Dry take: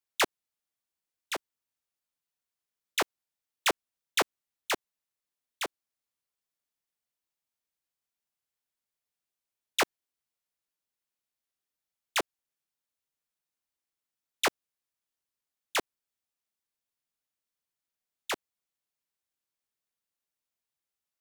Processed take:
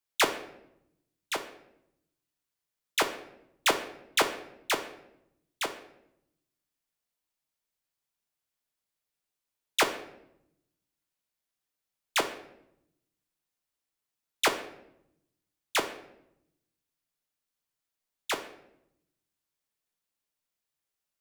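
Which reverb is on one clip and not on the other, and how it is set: shoebox room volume 220 m³, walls mixed, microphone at 0.49 m; gain +1.5 dB

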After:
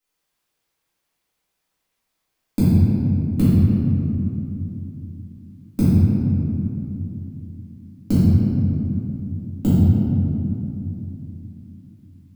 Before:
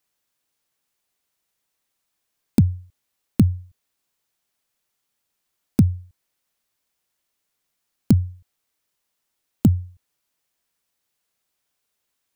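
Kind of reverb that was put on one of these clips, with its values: shoebox room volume 120 m³, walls hard, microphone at 2.1 m; gain -10 dB

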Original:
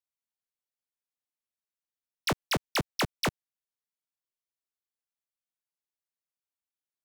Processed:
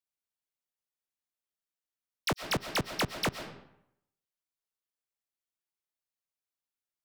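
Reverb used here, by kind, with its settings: digital reverb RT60 0.77 s, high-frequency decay 0.75×, pre-delay 85 ms, DRR 9 dB; gain -2 dB

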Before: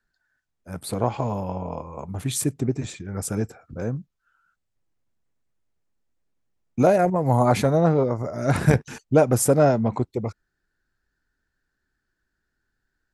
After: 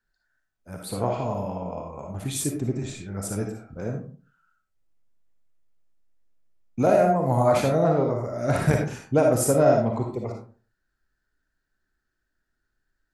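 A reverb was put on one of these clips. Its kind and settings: digital reverb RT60 0.41 s, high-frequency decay 0.5×, pre-delay 15 ms, DRR 1 dB; gain -4 dB

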